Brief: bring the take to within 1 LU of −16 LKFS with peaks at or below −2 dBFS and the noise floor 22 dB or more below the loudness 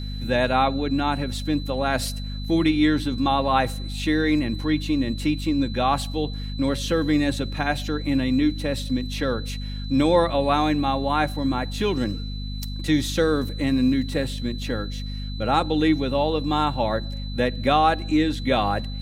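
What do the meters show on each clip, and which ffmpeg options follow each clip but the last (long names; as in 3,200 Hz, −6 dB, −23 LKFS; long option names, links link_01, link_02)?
mains hum 50 Hz; hum harmonics up to 250 Hz; level of the hum −28 dBFS; interfering tone 4,000 Hz; level of the tone −39 dBFS; integrated loudness −23.5 LKFS; sample peak −6.0 dBFS; target loudness −16.0 LKFS
→ -af "bandreject=frequency=50:width_type=h:width=4,bandreject=frequency=100:width_type=h:width=4,bandreject=frequency=150:width_type=h:width=4,bandreject=frequency=200:width_type=h:width=4,bandreject=frequency=250:width_type=h:width=4"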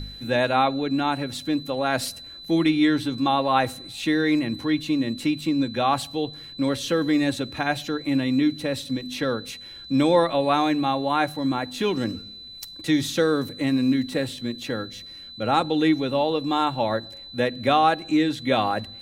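mains hum none found; interfering tone 4,000 Hz; level of the tone −39 dBFS
→ -af "bandreject=frequency=4000:width=30"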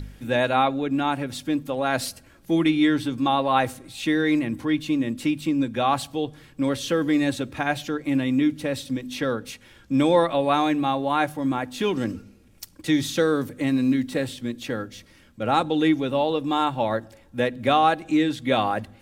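interfering tone none found; integrated loudness −24.0 LKFS; sample peak −6.5 dBFS; target loudness −16.0 LKFS
→ -af "volume=8dB,alimiter=limit=-2dB:level=0:latency=1"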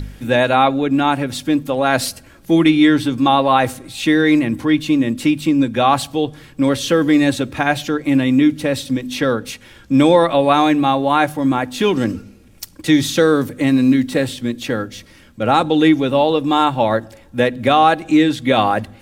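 integrated loudness −16.0 LKFS; sample peak −2.0 dBFS; background noise floor −45 dBFS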